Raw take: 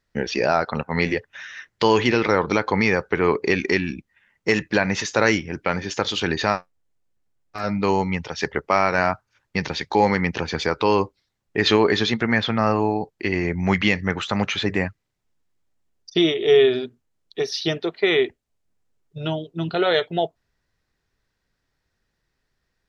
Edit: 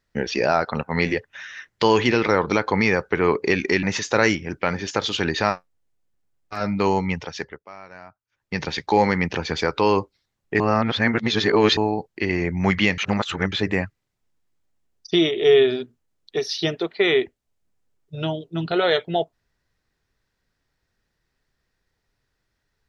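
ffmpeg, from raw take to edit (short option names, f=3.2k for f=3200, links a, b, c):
-filter_complex "[0:a]asplit=8[a][b][c][d][e][f][g][h];[a]atrim=end=3.832[i];[b]atrim=start=4.858:end=8.63,asetpts=PTS-STARTPTS,afade=t=out:st=3.362:d=0.41:silence=0.0749894[j];[c]atrim=start=8.63:end=9.29,asetpts=PTS-STARTPTS,volume=-22.5dB[k];[d]atrim=start=9.29:end=11.632,asetpts=PTS-STARTPTS,afade=t=in:d=0.41:silence=0.0749894[l];[e]atrim=start=11.628:end=12.802,asetpts=PTS-STARTPTS,areverse[m];[f]atrim=start=12.798:end=14.012[n];[g]atrim=start=14.008:end=14.552,asetpts=PTS-STARTPTS,areverse[o];[h]atrim=start=14.548[p];[j][k][l]concat=n=3:v=0:a=1[q];[i][q]acrossfade=d=0.004:c1=hsin:c2=hsin[r];[r][m]acrossfade=d=0.004:c1=hsin:c2=hsin[s];[s][n]acrossfade=d=0.004:c1=hsin:c2=hsin[t];[t][o]acrossfade=d=0.004:c1=hsin:c2=hsin[u];[u][p]acrossfade=d=0.004:c1=hsin:c2=hsin"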